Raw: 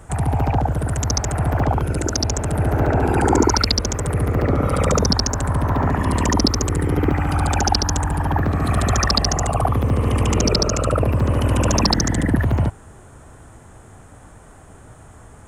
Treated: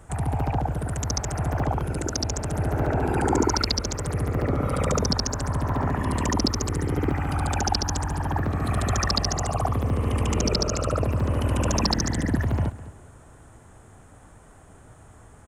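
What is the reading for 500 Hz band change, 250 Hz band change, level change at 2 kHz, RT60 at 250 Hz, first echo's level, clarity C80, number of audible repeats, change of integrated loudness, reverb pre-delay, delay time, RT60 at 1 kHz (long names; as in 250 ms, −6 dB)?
−6.0 dB, −6.0 dB, −6.0 dB, no reverb audible, −16.5 dB, no reverb audible, 2, −6.0 dB, no reverb audible, 205 ms, no reverb audible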